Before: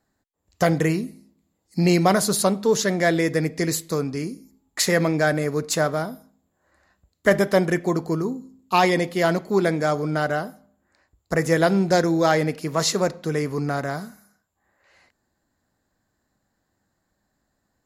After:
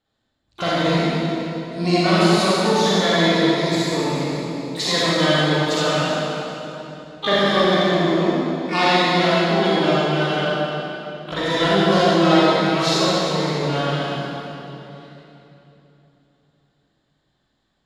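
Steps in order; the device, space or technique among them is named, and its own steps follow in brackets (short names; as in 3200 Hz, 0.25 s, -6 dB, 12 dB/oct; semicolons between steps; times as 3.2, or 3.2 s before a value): shimmer-style reverb (harmoniser +12 st -6 dB; reverb RT60 3.3 s, pre-delay 35 ms, DRR -9 dB); LPF 5900 Hz 12 dB/oct; bell 3600 Hz +10.5 dB 0.76 oct; gain -8 dB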